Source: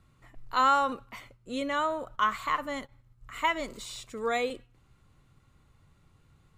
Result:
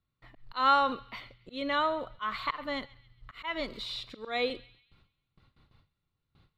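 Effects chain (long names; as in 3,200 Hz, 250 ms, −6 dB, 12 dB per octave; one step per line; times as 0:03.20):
noise gate with hold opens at −51 dBFS
high shelf with overshoot 5,500 Hz −10 dB, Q 3
volume swells 171 ms
feedback echo with a band-pass in the loop 136 ms, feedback 44%, band-pass 3,000 Hz, level −19 dB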